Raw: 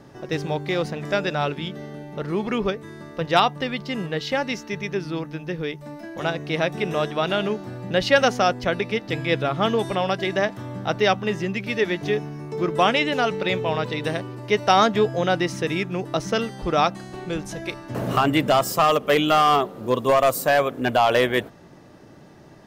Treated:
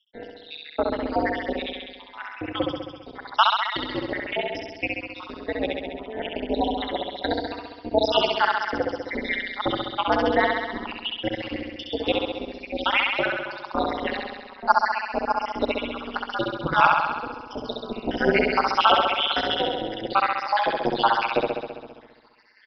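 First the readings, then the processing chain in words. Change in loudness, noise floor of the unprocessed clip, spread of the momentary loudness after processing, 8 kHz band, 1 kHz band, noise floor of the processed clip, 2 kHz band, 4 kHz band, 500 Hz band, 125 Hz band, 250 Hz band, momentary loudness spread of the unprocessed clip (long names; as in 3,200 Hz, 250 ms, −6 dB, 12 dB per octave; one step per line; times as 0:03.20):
−2.0 dB, −47 dBFS, 14 LU, below −15 dB, −0.5 dB, −47 dBFS, −0.5 dB, +0.5 dB, −4.5 dB, −11.5 dB, −4.0 dB, 12 LU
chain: time-frequency cells dropped at random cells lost 82%
high-shelf EQ 3,600 Hz +8 dB
frequency shifter +110 Hz
flutter between parallel walls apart 11.4 metres, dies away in 1.3 s
amplitude modulation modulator 210 Hz, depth 65%
downsampling to 11,025 Hz
level +5 dB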